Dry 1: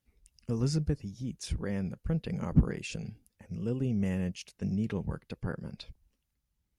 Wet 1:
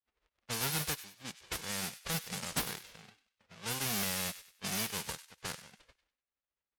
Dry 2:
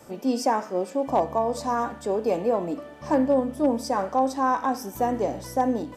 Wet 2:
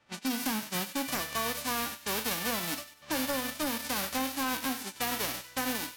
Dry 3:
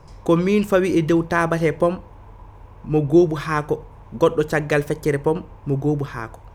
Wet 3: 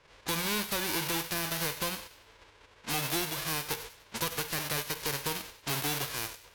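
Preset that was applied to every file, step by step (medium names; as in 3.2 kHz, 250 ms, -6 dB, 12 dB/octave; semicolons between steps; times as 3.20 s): formants flattened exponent 0.1; gate -34 dBFS, range -10 dB; dynamic bell 7.9 kHz, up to -7 dB, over -37 dBFS, Q 1.4; compression, threshold -22 dBFS; saturation -23 dBFS; level-controlled noise filter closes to 2.6 kHz, open at -28.5 dBFS; feedback echo behind a high-pass 97 ms, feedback 33%, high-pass 1.6 kHz, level -13 dB; trim -1.5 dB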